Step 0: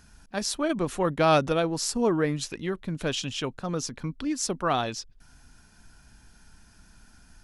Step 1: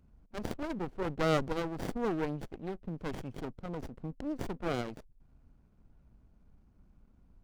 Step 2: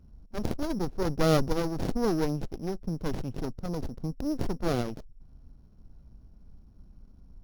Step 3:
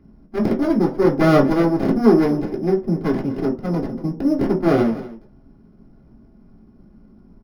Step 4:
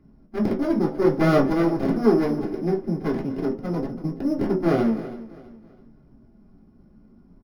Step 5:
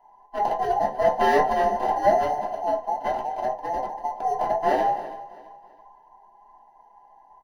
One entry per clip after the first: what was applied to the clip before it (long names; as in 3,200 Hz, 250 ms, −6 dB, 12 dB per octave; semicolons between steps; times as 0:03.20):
adaptive Wiener filter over 25 samples; windowed peak hold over 33 samples; level −5.5 dB
samples sorted by size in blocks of 8 samples; spectral tilt −1.5 dB per octave; level +3.5 dB
single-tap delay 243 ms −17.5 dB; convolution reverb RT60 0.35 s, pre-delay 3 ms, DRR −3.5 dB; level −3 dB
flanger 0.5 Hz, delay 6.3 ms, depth 7.7 ms, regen +67%; repeating echo 328 ms, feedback 36%, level −17 dB
frequency inversion band by band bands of 1,000 Hz; level −1.5 dB